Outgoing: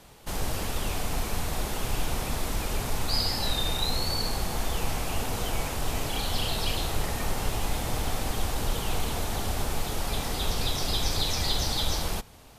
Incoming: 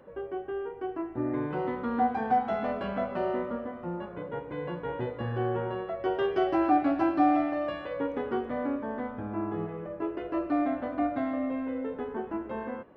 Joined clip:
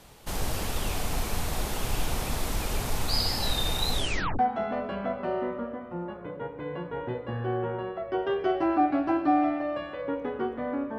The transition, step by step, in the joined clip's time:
outgoing
3.91 s: tape stop 0.48 s
4.39 s: go over to incoming from 2.31 s

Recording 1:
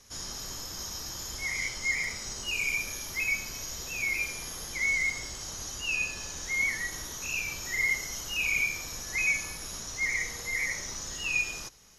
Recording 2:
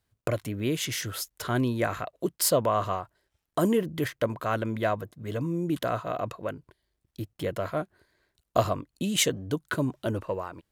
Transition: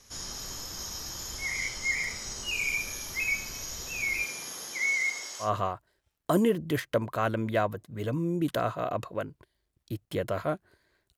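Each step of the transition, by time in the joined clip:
recording 1
4.23–5.51 s: high-pass 150 Hz -> 620 Hz
5.45 s: go over to recording 2 from 2.73 s, crossfade 0.12 s

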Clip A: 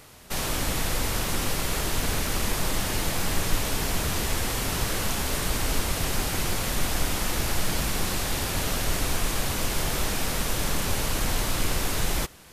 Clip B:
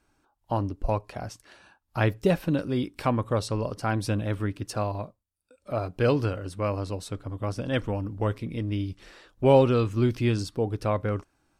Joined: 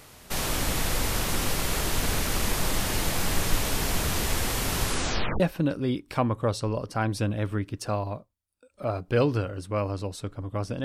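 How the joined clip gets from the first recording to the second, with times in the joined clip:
clip A
4.81 s: tape stop 0.59 s
5.40 s: go over to clip B from 2.28 s

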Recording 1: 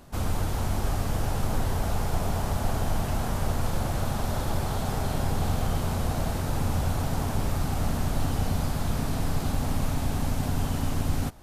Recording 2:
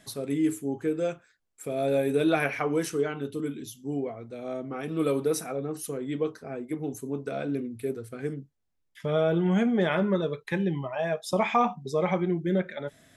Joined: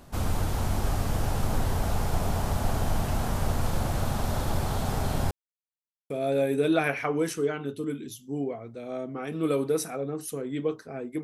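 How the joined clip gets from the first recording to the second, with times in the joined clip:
recording 1
5.31–6.10 s: mute
6.10 s: go over to recording 2 from 1.66 s

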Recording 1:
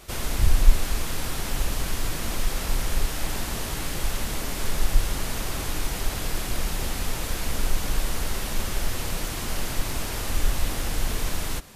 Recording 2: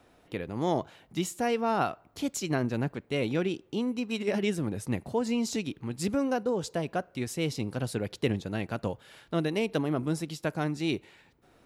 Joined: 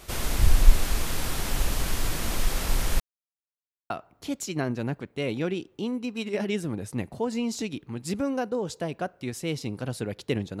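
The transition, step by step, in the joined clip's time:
recording 1
3.00–3.90 s: mute
3.90 s: go over to recording 2 from 1.84 s

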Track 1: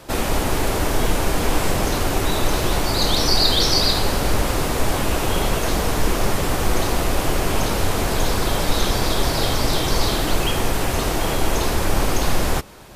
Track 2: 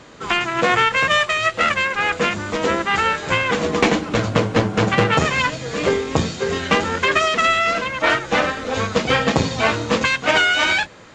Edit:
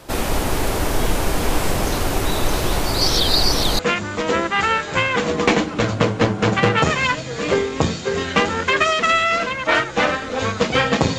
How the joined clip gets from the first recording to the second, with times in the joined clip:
track 1
3.01–3.79 s: reverse
3.79 s: go over to track 2 from 2.14 s

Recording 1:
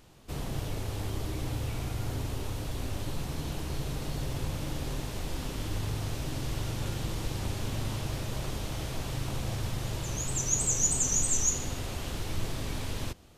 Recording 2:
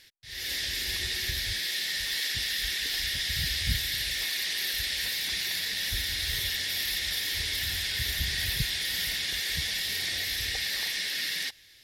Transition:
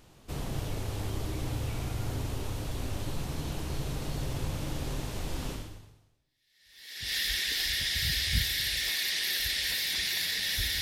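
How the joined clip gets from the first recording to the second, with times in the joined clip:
recording 1
6.33 s: go over to recording 2 from 1.67 s, crossfade 1.62 s exponential

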